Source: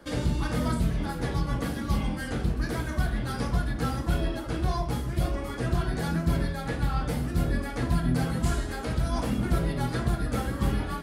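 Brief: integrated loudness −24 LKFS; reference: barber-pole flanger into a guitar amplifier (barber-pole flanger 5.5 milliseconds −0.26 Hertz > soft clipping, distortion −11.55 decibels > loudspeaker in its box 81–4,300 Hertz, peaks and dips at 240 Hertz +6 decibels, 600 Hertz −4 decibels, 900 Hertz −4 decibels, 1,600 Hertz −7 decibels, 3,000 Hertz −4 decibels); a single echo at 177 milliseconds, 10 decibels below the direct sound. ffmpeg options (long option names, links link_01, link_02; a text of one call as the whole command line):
ffmpeg -i in.wav -filter_complex "[0:a]aecho=1:1:177:0.316,asplit=2[link_01][link_02];[link_02]adelay=5.5,afreqshift=-0.26[link_03];[link_01][link_03]amix=inputs=2:normalize=1,asoftclip=threshold=-27dB,highpass=81,equalizer=frequency=240:width_type=q:width=4:gain=6,equalizer=frequency=600:width_type=q:width=4:gain=-4,equalizer=frequency=900:width_type=q:width=4:gain=-4,equalizer=frequency=1600:width_type=q:width=4:gain=-7,equalizer=frequency=3000:width_type=q:width=4:gain=-4,lowpass=frequency=4300:width=0.5412,lowpass=frequency=4300:width=1.3066,volume=11dB" out.wav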